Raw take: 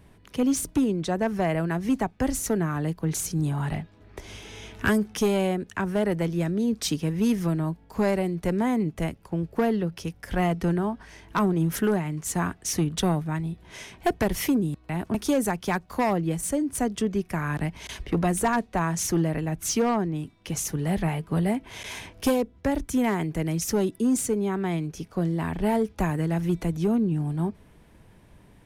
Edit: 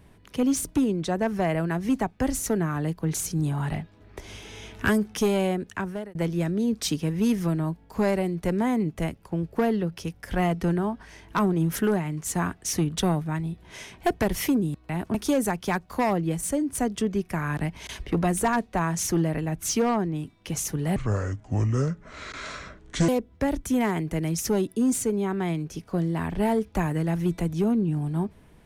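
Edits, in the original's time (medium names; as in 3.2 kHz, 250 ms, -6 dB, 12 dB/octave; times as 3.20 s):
5.71–6.15 s: fade out
20.96–22.32 s: speed 64%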